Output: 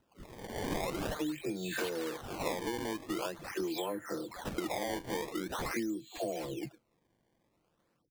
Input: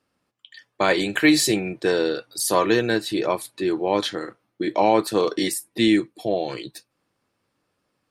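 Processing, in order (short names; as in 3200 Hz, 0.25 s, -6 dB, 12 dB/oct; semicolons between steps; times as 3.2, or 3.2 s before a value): spectral delay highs early, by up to 0.596 s; compressor 10:1, threshold -33 dBFS, peak gain reduction 18.5 dB; decimation with a swept rate 19×, swing 160% 0.45 Hz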